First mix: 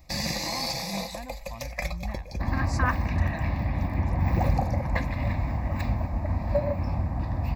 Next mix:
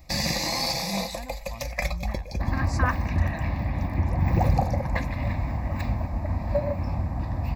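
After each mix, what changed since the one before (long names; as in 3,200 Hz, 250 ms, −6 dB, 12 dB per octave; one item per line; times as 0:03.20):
first sound +3.5 dB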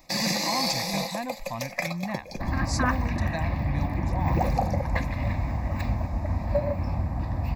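speech +8.5 dB
first sound: add high-pass filter 160 Hz 24 dB per octave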